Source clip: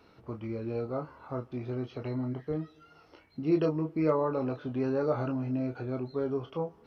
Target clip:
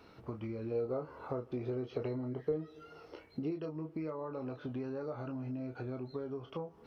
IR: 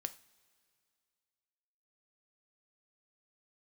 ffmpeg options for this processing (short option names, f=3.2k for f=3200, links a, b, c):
-filter_complex "[0:a]acompressor=threshold=-38dB:ratio=10,asettb=1/sr,asplit=3[a][b][c];[a]atrim=end=0.714[d];[b]atrim=start=0.71:end=3.51,asetpts=PTS-STARTPTS,afade=t=in:d=0.004:c=qsin,afade=t=out:st=2.796:d=0.004:c=qsin,equalizer=f=450:w=2.1:g=9[e];[c]atrim=start=3.506[f];[d][e]acrossfade=d=0.004:c1=hsin:c2=qsin[g];[g][f]acrossfade=d=0.004:c1=qsin:c2=hsin,volume=1.5dB"